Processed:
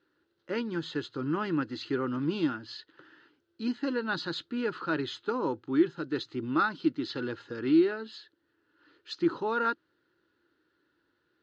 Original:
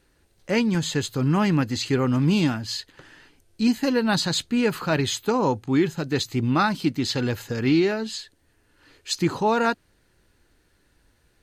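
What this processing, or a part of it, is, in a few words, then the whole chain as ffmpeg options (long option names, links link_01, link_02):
kitchen radio: -filter_complex "[0:a]highpass=190,equalizer=frequency=200:width_type=q:width=4:gain=-7,equalizer=frequency=330:width_type=q:width=4:gain=9,equalizer=frequency=710:width_type=q:width=4:gain=-10,equalizer=frequency=1400:width_type=q:width=4:gain=8,equalizer=frequency=2300:width_type=q:width=4:gain=-9,lowpass=frequency=4200:width=0.5412,lowpass=frequency=4200:width=1.3066,asettb=1/sr,asplit=3[link_01][link_02][link_03];[link_01]atrim=end=7.684[link_04];[link_02]atrim=start=7.68:end=8.12,asetpts=PTS-STARTPTS,afade=type=in:duration=0.004:curve=qsin,afade=type=out:start_time=0.436:duration=0.004:curve=qsin,equalizer=frequency=5800:width=4.1:gain=-8.5[link_05];[link_03]atrim=start=8.116[link_06];[link_04][link_05]acrossfade=duration=0.004:curve1=hsin:curve2=qsin[link_07];[link_07][link_06]acrossfade=duration=0.004:curve1=qsin:curve2=hsin,volume=-8.5dB"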